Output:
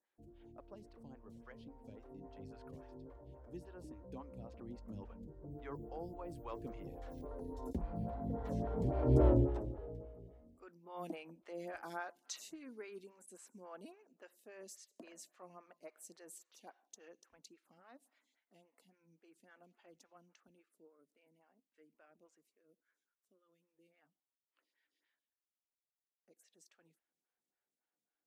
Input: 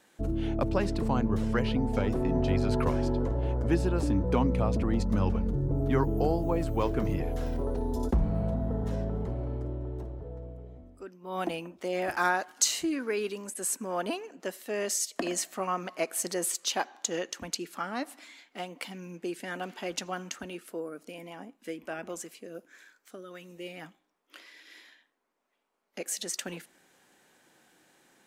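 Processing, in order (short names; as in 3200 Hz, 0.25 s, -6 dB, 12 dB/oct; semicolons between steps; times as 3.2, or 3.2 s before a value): Doppler pass-by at 9.27, 16 m/s, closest 1.4 m; photocell phaser 3.6 Hz; gain +15.5 dB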